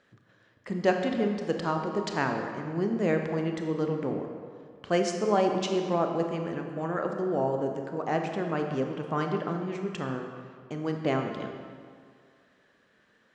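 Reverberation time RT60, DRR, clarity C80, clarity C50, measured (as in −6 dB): 2.1 s, 3.5 dB, 5.5 dB, 4.5 dB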